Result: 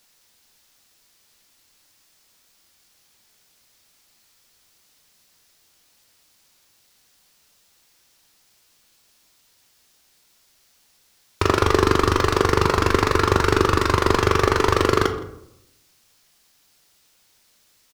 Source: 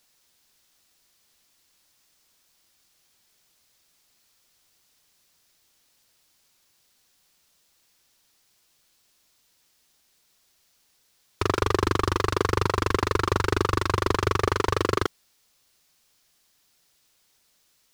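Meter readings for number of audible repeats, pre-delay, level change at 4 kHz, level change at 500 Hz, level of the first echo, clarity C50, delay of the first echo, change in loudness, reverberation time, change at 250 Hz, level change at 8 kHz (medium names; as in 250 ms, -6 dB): 1, 9 ms, +5.5 dB, +6.5 dB, -21.5 dB, 10.0 dB, 166 ms, +6.0 dB, 0.80 s, +7.0 dB, +5.5 dB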